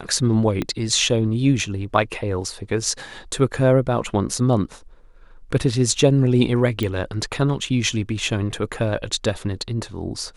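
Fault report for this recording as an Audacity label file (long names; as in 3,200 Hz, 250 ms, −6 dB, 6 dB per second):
0.620000	0.620000	click −11 dBFS
6.830000	6.830000	click −11 dBFS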